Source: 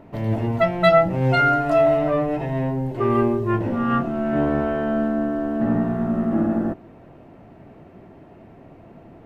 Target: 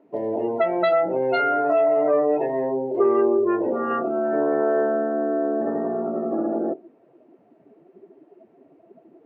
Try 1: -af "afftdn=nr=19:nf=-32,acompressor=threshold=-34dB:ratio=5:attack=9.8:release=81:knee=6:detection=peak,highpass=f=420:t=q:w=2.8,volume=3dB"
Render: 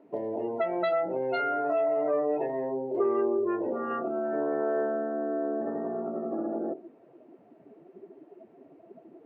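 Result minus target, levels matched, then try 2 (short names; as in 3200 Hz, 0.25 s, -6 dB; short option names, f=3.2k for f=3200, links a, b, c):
compressor: peak gain reduction +7.5 dB
-af "afftdn=nr=19:nf=-32,acompressor=threshold=-24.5dB:ratio=5:attack=9.8:release=81:knee=6:detection=peak,highpass=f=420:t=q:w=2.8,volume=3dB"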